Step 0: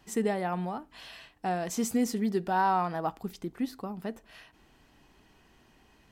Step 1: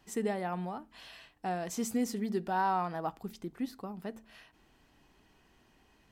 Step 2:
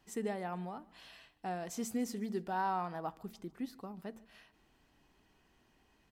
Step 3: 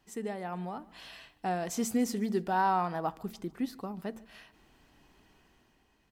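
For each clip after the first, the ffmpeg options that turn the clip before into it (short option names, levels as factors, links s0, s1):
-af "bandreject=f=73.54:t=h:w=4,bandreject=f=147.08:t=h:w=4,bandreject=f=220.62:t=h:w=4,volume=0.631"
-af "aecho=1:1:147|294|441:0.0668|0.0287|0.0124,volume=0.596"
-af "dynaudnorm=f=120:g=11:m=2.24"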